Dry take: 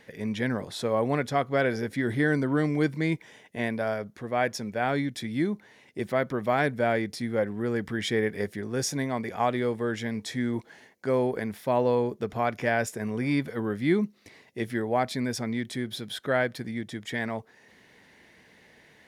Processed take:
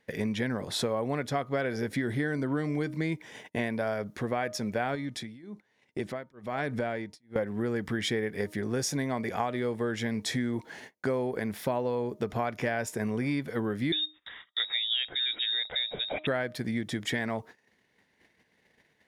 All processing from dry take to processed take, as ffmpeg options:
ffmpeg -i in.wav -filter_complex "[0:a]asettb=1/sr,asplit=3[link_01][link_02][link_03];[link_01]atrim=end=4.954[link_04];[link_02]atrim=start=4.95:end=7.36,asetpts=PTS-STARTPTS,afade=type=in:duration=0.004:curve=qsin,afade=type=out:start_time=2.406:duration=0.004:curve=qsin,lowpass=10000,acompressor=threshold=-35dB:ratio=2:attack=3.2:release=140:knee=1:detection=peak,tremolo=f=1.1:d=0.92[link_05];[link_03]atrim=start=7.356[link_06];[link_04][link_05]acrossfade=duration=0.004:curve1=hsin:curve2=qsin[link_07];[link_07][link_06]acrossfade=duration=0.004:curve1=qsin:curve2=hsin,asettb=1/sr,asplit=3[link_08][link_09][link_10];[link_08]atrim=end=13.924[link_11];[link_09]atrim=start=13.92:end=16.27,asetpts=PTS-STARTPTS,afade=type=in:duration=0.004:curve=qsin,afade=type=out:start_time=2.346:duration=0.004:curve=qsin,highshelf=frequency=2100:gain=2,lowpass=frequency=3300:width_type=q:width=0.5098,lowpass=frequency=3300:width_type=q:width=0.6013,lowpass=frequency=3300:width_type=q:width=0.9,lowpass=frequency=3300:width_type=q:width=2.563,afreqshift=-3900[link_12];[link_10]atrim=start=16.266[link_13];[link_11][link_12]acrossfade=duration=0.004:curve1=hsin:curve2=qsin[link_14];[link_14][link_13]acrossfade=duration=0.004:curve1=qsin:curve2=hsin,acompressor=threshold=-35dB:ratio=6,bandreject=frequency=308:width_type=h:width=4,bandreject=frequency=616:width_type=h:width=4,bandreject=frequency=924:width_type=h:width=4,bandreject=frequency=1232:width_type=h:width=4,agate=range=-22dB:threshold=-53dB:ratio=16:detection=peak,volume=7.5dB" out.wav

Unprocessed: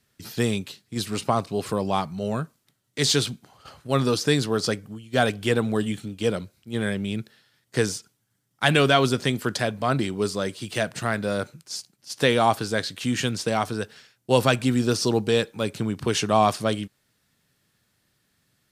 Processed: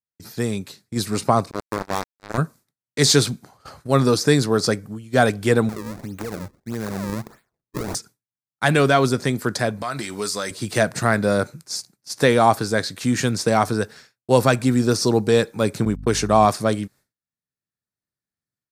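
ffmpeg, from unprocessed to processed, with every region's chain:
ffmpeg -i in.wav -filter_complex "[0:a]asettb=1/sr,asplit=3[link_01][link_02][link_03];[link_01]atrim=end=1.514[link_04];[link_02]atrim=start=1.51:end=2.38,asetpts=PTS-STARTPTS,afade=type=in:duration=0.004:curve=qsin,afade=type=out:start_time=0.866:duration=0.004:curve=qsin,asplit=2[link_05][link_06];[link_06]adelay=46,volume=-8.5dB[link_07];[link_05][link_07]amix=inputs=2:normalize=0,atrim=end_sample=38367,asoftclip=type=hard:threshold=-16.5dB,acrusher=bits=2:mix=0:aa=0.5[link_08];[link_03]atrim=start=2.376[link_09];[link_04][link_08]acrossfade=duration=0.004:curve1=hsin:curve2=qsin[link_10];[link_10][link_09]acrossfade=duration=0.004:curve1=qsin:curve2=hsin,asettb=1/sr,asplit=3[link_11][link_12][link_13];[link_11]atrim=end=5.694[link_14];[link_12]atrim=start=5.69:end=7.95,asetpts=PTS-STARTPTS,afade=type=in:duration=0.004:curve=qsin,afade=type=out:start_time=2.256:duration=0.004:curve=qsin,acompressor=threshold=-33dB:ratio=8:attack=3.2:release=140:knee=1:detection=peak,acrusher=samples=35:mix=1:aa=0.000001:lfo=1:lforange=56:lforate=1.6[link_15];[link_13]atrim=start=7.946[link_16];[link_14][link_15]acrossfade=duration=0.004:curve1=hsin:curve2=qsin[link_17];[link_17][link_16]acrossfade=duration=0.004:curve1=qsin:curve2=hsin,asettb=1/sr,asplit=3[link_18][link_19][link_20];[link_18]atrim=end=9.824[link_21];[link_19]atrim=start=9.82:end=10.51,asetpts=PTS-STARTPTS,afade=type=in:duration=0.004:curve=qsin,afade=type=out:start_time=0.686:duration=0.004:curve=qsin,tiltshelf=frequency=820:gain=-8.5,acompressor=threshold=-29dB:ratio=3:attack=3.2:release=140:knee=1:detection=peak,asplit=2[link_22][link_23];[link_23]adelay=14,volume=-10.5dB[link_24];[link_22][link_24]amix=inputs=2:normalize=0,atrim=end_sample=30429[link_25];[link_20]atrim=start=10.506[link_26];[link_21][link_25]acrossfade=duration=0.004:curve1=hsin:curve2=qsin[link_27];[link_27][link_26]acrossfade=duration=0.004:curve1=qsin:curve2=hsin,asettb=1/sr,asplit=3[link_28][link_29][link_30];[link_28]atrim=end=15.854[link_31];[link_29]atrim=start=15.85:end=16.46,asetpts=PTS-STARTPTS,afade=type=in:duration=0.004:curve=qsin,afade=type=out:start_time=0.606:duration=0.004:curve=qsin,agate=range=-40dB:threshold=-30dB:ratio=16:release=100:detection=peak,aeval=exprs='val(0)+0.0126*(sin(2*PI*50*n/s)+sin(2*PI*2*50*n/s)/2+sin(2*PI*3*50*n/s)/3+sin(2*PI*4*50*n/s)/4+sin(2*PI*5*50*n/s)/5)':channel_layout=same[link_32];[link_30]atrim=start=16.456[link_33];[link_31][link_32]acrossfade=duration=0.004:curve1=hsin:curve2=qsin[link_34];[link_34][link_33]acrossfade=duration=0.004:curve1=qsin:curve2=hsin,agate=range=-33dB:threshold=-47dB:ratio=3:detection=peak,equalizer=frequency=3000:width_type=o:width=0.49:gain=-11,dynaudnorm=framelen=490:gausssize=3:maxgain=11.5dB,volume=-1dB" out.wav

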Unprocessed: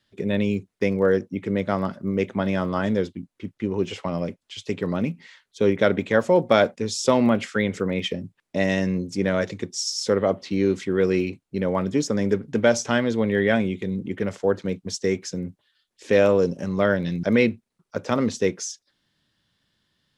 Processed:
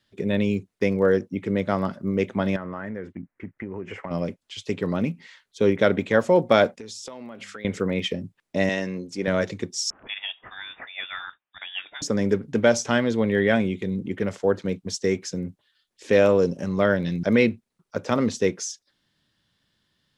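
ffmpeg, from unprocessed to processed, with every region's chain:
ffmpeg -i in.wav -filter_complex "[0:a]asettb=1/sr,asplit=3[link_01][link_02][link_03];[link_01]atrim=end=2.564[link_04];[link_02]atrim=start=2.56:end=4.11,asetpts=PTS-STARTPTS,afade=type=in:duration=0.004:curve=qsin,afade=type=out:start_time=1.546:duration=0.004:curve=qsin,highshelf=frequency=2700:width_type=q:width=3:gain=-12,acompressor=threshold=-29dB:ratio=6:attack=3.2:release=140:knee=1:detection=peak[link_05];[link_03]atrim=start=4.106[link_06];[link_04][link_05]acrossfade=duration=0.004:curve1=hsin:curve2=qsin[link_07];[link_07][link_06]acrossfade=duration=0.004:curve1=qsin:curve2=hsin,asettb=1/sr,asplit=3[link_08][link_09][link_10];[link_08]atrim=end=6.794[link_11];[link_09]atrim=start=6.79:end=7.65,asetpts=PTS-STARTPTS,afade=type=in:duration=0.004:curve=qsin,afade=type=out:start_time=0.856:duration=0.004:curve=qsin,lowshelf=frequency=210:gain=-10,bandreject=frequency=50:width_type=h:width=6,bandreject=frequency=100:width_type=h:width=6,bandreject=frequency=150:width_type=h:width=6,bandreject=frequency=200:width_type=h:width=6,acompressor=threshold=-34dB:ratio=16:attack=3.2:release=140:knee=1:detection=peak[link_12];[link_10]atrim=start=7.646[link_13];[link_11][link_12]acrossfade=duration=0.004:curve1=hsin:curve2=qsin[link_14];[link_14][link_13]acrossfade=duration=0.004:curve1=qsin:curve2=hsin,asettb=1/sr,asplit=3[link_15][link_16][link_17];[link_15]atrim=end=8.694[link_18];[link_16]atrim=start=8.69:end=9.28,asetpts=PTS-STARTPTS,afade=type=in:duration=0.004:curve=qsin,afade=type=out:start_time=0.586:duration=0.004:curve=qsin,highpass=frequency=400:poles=1,highshelf=frequency=8500:gain=-7[link_19];[link_17]atrim=start=9.276[link_20];[link_18][link_19]acrossfade=duration=0.004:curve1=hsin:curve2=qsin[link_21];[link_21][link_20]acrossfade=duration=0.004:curve1=qsin:curve2=hsin,asettb=1/sr,asplit=3[link_22][link_23][link_24];[link_22]atrim=end=9.904[link_25];[link_23]atrim=start=9.9:end=12.02,asetpts=PTS-STARTPTS,afade=type=in:duration=0.004:curve=qsin,afade=type=out:start_time=2.116:duration=0.004:curve=qsin,highpass=1200,aemphasis=mode=production:type=50fm,lowpass=frequency=3300:width_type=q:width=0.5098,lowpass=frequency=3300:width_type=q:width=0.6013,lowpass=frequency=3300:width_type=q:width=0.9,lowpass=frequency=3300:width_type=q:width=2.563,afreqshift=-3900[link_26];[link_24]atrim=start=12.016[link_27];[link_25][link_26]acrossfade=duration=0.004:curve1=hsin:curve2=qsin[link_28];[link_28][link_27]acrossfade=duration=0.004:curve1=qsin:curve2=hsin" out.wav

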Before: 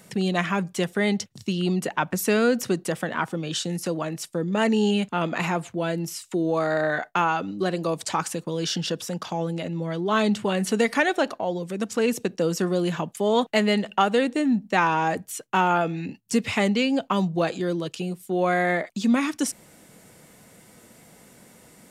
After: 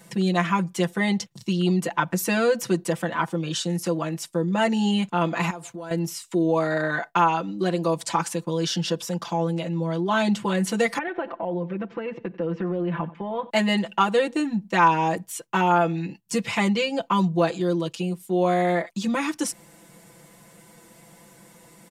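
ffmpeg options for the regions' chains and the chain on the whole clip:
ffmpeg -i in.wav -filter_complex "[0:a]asettb=1/sr,asplit=3[link_01][link_02][link_03];[link_01]atrim=end=5.504[link_04];[link_02]atrim=start=5.5:end=5.91,asetpts=PTS-STARTPTS,afade=type=in:duration=0.004:curve=qsin,afade=type=out:start_time=0.406:duration=0.004:curve=qsin,bass=frequency=250:gain=-5,treble=frequency=4000:gain=7,acompressor=threshold=-34dB:ratio=10:attack=3.2:release=140:knee=1:detection=peak,agate=range=-33dB:threshold=-49dB:ratio=3:release=100:detection=peak[link_05];[link_03]atrim=start=5.906[link_06];[link_04][link_05]acrossfade=duration=0.004:curve1=hsin:curve2=qsin[link_07];[link_07][link_06]acrossfade=duration=0.004:curve1=qsin:curve2=hsin,asettb=1/sr,asplit=3[link_08][link_09][link_10];[link_08]atrim=end=10.984[link_11];[link_09]atrim=start=10.98:end=13.5,asetpts=PTS-STARTPTS,afade=type=in:duration=0.004:curve=qsin,afade=type=out:start_time=2.516:duration=0.004:curve=qsin,acompressor=threshold=-24dB:ratio=6:attack=3.2:release=140:knee=1:detection=peak,lowpass=frequency=2500:width=0.5412,lowpass=frequency=2500:width=1.3066,aecho=1:1:92|184|276:0.112|0.0381|0.013,atrim=end_sample=111132[link_12];[link_10]atrim=start=13.496[link_13];[link_11][link_12]acrossfade=duration=0.004:curve1=hsin:curve2=qsin[link_14];[link_14][link_13]acrossfade=duration=0.004:curve1=qsin:curve2=hsin,equalizer=frequency=970:width=7:gain=6.5,aecho=1:1:5.9:0.99,volume=-3dB" out.wav

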